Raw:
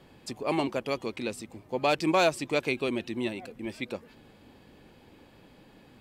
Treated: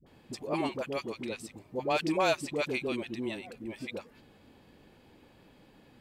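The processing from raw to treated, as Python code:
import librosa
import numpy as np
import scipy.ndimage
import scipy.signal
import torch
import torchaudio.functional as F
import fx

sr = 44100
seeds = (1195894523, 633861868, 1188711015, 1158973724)

y = fx.dispersion(x, sr, late='highs', ms=65.0, hz=550.0)
y = y * librosa.db_to_amplitude(-3.5)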